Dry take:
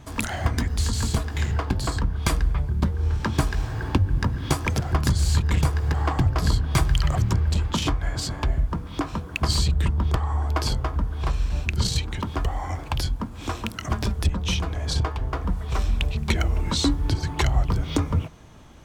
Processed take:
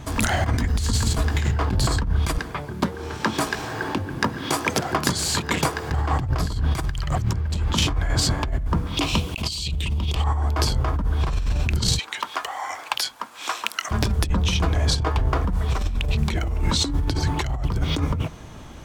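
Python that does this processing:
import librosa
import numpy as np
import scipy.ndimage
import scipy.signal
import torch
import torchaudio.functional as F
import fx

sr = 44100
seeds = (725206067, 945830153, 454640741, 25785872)

y = fx.highpass(x, sr, hz=260.0, slope=12, at=(2.38, 5.91))
y = fx.high_shelf_res(y, sr, hz=2100.0, db=9.0, q=3.0, at=(8.97, 10.24))
y = fx.highpass(y, sr, hz=960.0, slope=12, at=(11.99, 13.91))
y = fx.over_compress(y, sr, threshold_db=-26.0, ratio=-1.0)
y = y * librosa.db_to_amplitude(4.5)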